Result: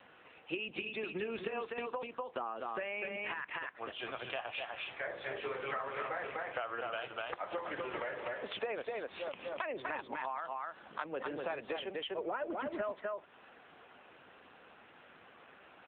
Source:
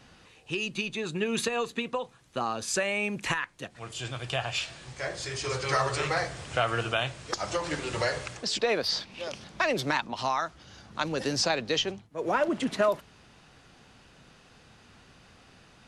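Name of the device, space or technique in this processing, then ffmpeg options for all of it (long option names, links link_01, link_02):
voicemail: -af "highpass=360,lowpass=2600,aecho=1:1:248:0.596,acompressor=threshold=-37dB:ratio=6,volume=2dB" -ar 8000 -c:a libopencore_amrnb -b:a 7950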